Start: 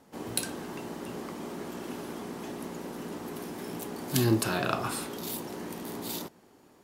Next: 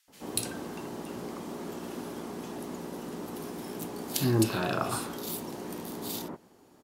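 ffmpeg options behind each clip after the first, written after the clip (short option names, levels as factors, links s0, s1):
-filter_complex "[0:a]acrossover=split=2000[s0][s1];[s0]adelay=80[s2];[s2][s1]amix=inputs=2:normalize=0"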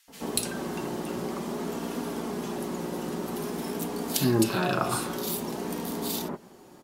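-filter_complex "[0:a]asplit=2[s0][s1];[s1]acompressor=threshold=0.0112:ratio=6,volume=1.12[s2];[s0][s2]amix=inputs=2:normalize=0,flanger=delay=4.3:depth=1.3:regen=-41:speed=0.51:shape=sinusoidal,volume=1.78"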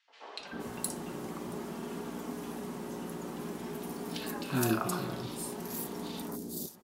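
-filter_complex "[0:a]acrossover=split=530|4600[s0][s1][s2];[s0]adelay=310[s3];[s2]adelay=470[s4];[s3][s1][s4]amix=inputs=3:normalize=0,volume=0.501"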